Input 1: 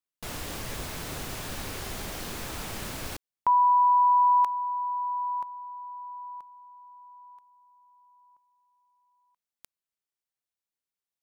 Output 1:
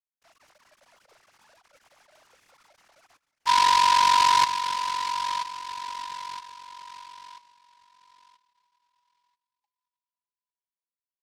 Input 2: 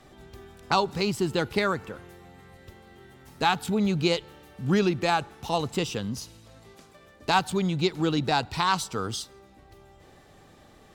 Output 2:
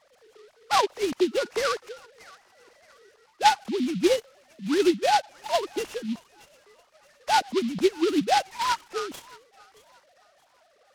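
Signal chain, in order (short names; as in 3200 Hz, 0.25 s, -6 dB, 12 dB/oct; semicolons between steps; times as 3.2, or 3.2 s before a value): sine-wave speech; dynamic EQ 620 Hz, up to +4 dB, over -34 dBFS, Q 2; on a send: thin delay 0.625 s, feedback 34%, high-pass 1600 Hz, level -16 dB; on the sum: noise-modulated delay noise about 3100 Hz, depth 0.065 ms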